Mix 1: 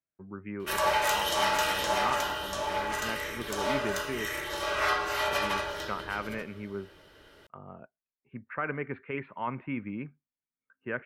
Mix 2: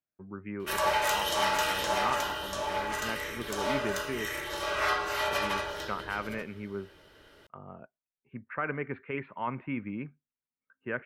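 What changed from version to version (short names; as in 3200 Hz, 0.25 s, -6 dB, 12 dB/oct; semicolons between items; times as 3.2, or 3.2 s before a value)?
background: send -10.5 dB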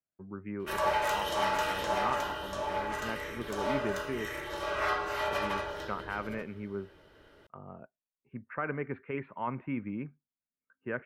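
master: add high shelf 2300 Hz -9 dB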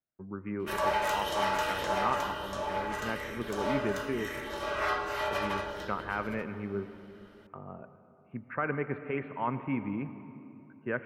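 speech: send on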